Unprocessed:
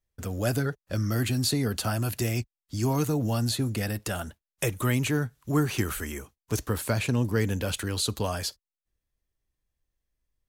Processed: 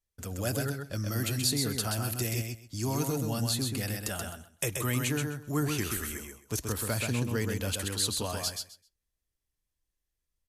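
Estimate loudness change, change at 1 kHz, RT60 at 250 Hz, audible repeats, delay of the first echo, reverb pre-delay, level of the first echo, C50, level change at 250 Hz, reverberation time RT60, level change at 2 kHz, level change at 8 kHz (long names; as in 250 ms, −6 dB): −3.0 dB, −4.0 dB, no reverb audible, 3, 130 ms, no reverb audible, −4.5 dB, no reverb audible, −4.5 dB, no reverb audible, −3.0 dB, +2.0 dB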